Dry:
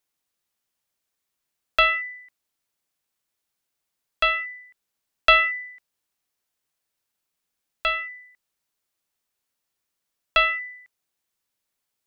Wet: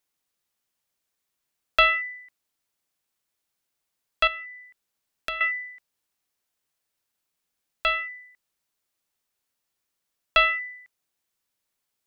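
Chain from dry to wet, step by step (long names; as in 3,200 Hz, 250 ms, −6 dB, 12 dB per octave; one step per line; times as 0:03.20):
0:04.27–0:05.41: downward compressor 3 to 1, threshold −36 dBFS, peak gain reduction 17.5 dB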